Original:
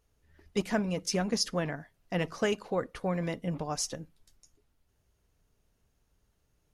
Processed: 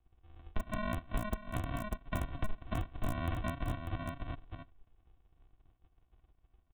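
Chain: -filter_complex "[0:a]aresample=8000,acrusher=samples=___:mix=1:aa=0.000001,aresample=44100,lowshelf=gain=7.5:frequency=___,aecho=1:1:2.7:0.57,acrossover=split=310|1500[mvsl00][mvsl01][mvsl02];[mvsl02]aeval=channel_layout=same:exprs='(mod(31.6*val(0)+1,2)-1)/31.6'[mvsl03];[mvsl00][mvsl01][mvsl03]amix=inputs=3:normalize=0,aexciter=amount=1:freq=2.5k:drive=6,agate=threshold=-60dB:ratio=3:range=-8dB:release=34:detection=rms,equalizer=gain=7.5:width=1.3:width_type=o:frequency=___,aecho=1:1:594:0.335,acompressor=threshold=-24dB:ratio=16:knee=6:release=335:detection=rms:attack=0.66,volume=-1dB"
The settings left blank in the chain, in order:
19, 180, 900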